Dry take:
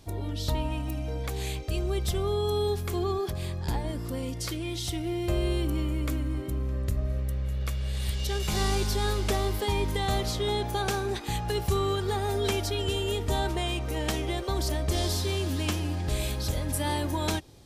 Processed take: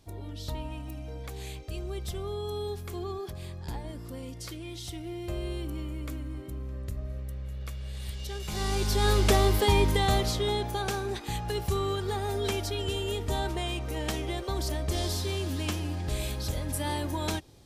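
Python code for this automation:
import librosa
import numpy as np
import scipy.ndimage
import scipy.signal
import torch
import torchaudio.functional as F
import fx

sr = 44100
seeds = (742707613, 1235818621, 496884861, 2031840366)

y = fx.gain(x, sr, db=fx.line((8.46, -7.0), (9.16, 5.0), (9.78, 5.0), (10.79, -2.5)))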